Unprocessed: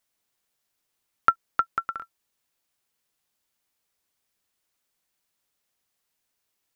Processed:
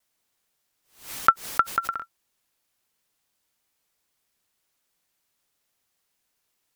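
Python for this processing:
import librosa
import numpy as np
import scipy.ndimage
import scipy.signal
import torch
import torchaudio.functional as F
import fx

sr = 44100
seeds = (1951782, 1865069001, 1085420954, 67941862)

y = fx.vibrato(x, sr, rate_hz=0.7, depth_cents=14.0)
y = fx.pre_swell(y, sr, db_per_s=140.0)
y = y * librosa.db_to_amplitude(3.0)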